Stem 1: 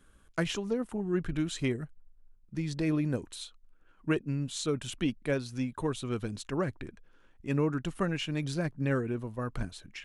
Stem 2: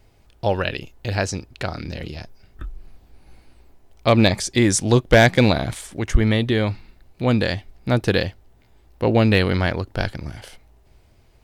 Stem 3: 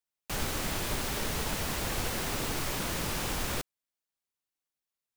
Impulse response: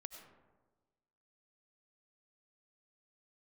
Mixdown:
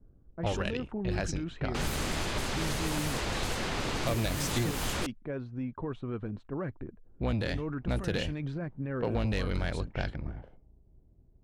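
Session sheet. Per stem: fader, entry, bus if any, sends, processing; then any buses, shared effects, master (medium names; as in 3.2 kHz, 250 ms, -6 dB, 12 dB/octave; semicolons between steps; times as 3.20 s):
+1.0 dB, 0.00 s, no send, peak limiter -27.5 dBFS, peak gain reduction 11.5 dB
-6.5 dB, 0.00 s, muted 4.71–7.06 s, no send, octave divider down 1 oct, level 0 dB; band-stop 4.6 kHz, Q 14; valve stage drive 10 dB, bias 0.3
+2.5 dB, 1.45 s, no send, band-stop 5.6 kHz, Q 29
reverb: none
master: level-controlled noise filter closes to 340 Hz, open at -23.5 dBFS; compression 5:1, threshold -27 dBFS, peak gain reduction 8 dB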